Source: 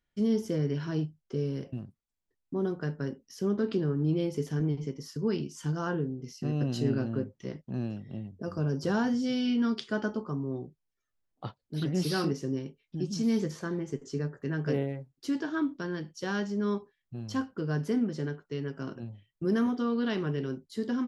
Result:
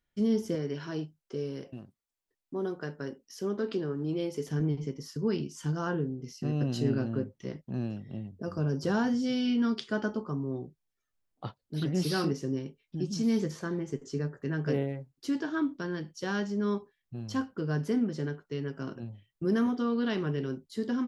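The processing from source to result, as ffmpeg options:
-filter_complex "[0:a]asettb=1/sr,asplit=3[s0][s1][s2];[s0]atrim=end=0.554[s3];[s1]atrim=start=0.55:end=4.48,asetpts=PTS-STARTPTS,afade=t=in:d=0.004:c=qsin,afade=t=out:st=3.926:d=0.004:c=qsin,bass=f=250:g=-9,treble=f=4000:g=1[s4];[s2]atrim=start=4.476[s5];[s3][s4]acrossfade=d=0.004:c1=hsin:c2=qsin[s6];[s6][s5]acrossfade=d=0.004:c1=qsin:c2=hsin"

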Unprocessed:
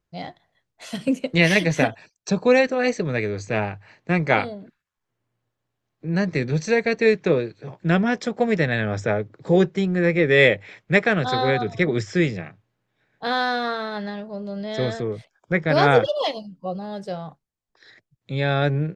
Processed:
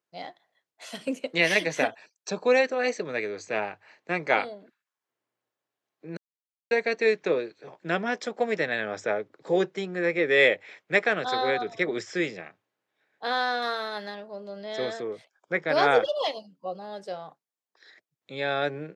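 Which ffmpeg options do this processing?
-filter_complex "[0:a]asettb=1/sr,asplit=3[s0][s1][s2];[s0]atrim=end=13.624[s3];[s1]atrim=start=13.62:end=14.15,asetpts=PTS-STARTPTS,afade=t=in:d=0.004:c=qsin,afade=t=out:st=0.526:d=0.004:c=qsin,aemphasis=mode=production:type=50kf[s4];[s2]atrim=start=14.146[s5];[s3][s4]acrossfade=d=0.004:c1=hsin:c2=qsin[s6];[s6][s5]acrossfade=d=0.004:c1=qsin:c2=hsin,asplit=3[s7][s8][s9];[s7]atrim=end=6.17,asetpts=PTS-STARTPTS,afade=t=out:st=6.166:d=0.004:c=hsin[s10];[s8]atrim=start=6.17:end=6.71,asetpts=PTS-STARTPTS,volume=0[s11];[s9]atrim=start=6.71,asetpts=PTS-STARTPTS,afade=t=in:d=0.004:c=hsin[s12];[s10][s11][s12]concat=n=3:v=0:a=1,highpass=360,volume=0.668"

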